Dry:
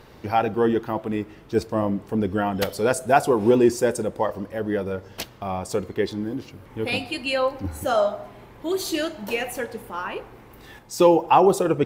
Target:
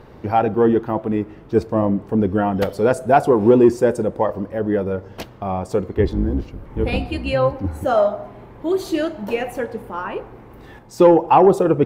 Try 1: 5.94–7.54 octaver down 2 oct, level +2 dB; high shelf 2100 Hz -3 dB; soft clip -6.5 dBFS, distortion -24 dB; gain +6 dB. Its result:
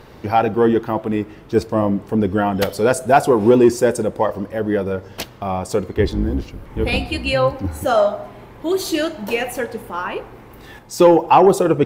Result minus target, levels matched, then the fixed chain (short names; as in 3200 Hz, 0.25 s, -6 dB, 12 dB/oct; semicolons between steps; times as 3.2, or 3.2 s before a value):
4000 Hz band +7.0 dB
5.94–7.54 octaver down 2 oct, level +2 dB; high shelf 2100 Hz -14 dB; soft clip -6.5 dBFS, distortion -26 dB; gain +6 dB